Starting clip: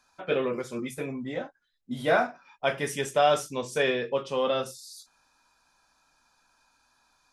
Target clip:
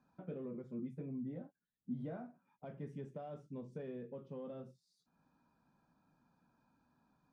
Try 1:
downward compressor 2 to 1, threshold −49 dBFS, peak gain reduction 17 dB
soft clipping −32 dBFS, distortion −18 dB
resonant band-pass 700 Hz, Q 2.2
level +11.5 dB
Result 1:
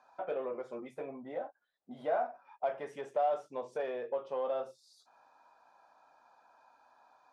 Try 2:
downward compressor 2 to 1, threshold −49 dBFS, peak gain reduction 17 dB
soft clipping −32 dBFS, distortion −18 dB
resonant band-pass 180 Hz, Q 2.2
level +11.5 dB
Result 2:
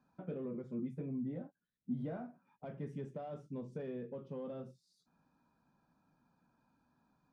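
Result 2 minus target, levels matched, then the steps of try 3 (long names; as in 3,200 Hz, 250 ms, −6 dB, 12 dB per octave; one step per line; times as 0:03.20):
downward compressor: peak gain reduction −3.5 dB
downward compressor 2 to 1, threshold −56 dBFS, peak gain reduction 20.5 dB
soft clipping −32 dBFS, distortion −23 dB
resonant band-pass 180 Hz, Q 2.2
level +11.5 dB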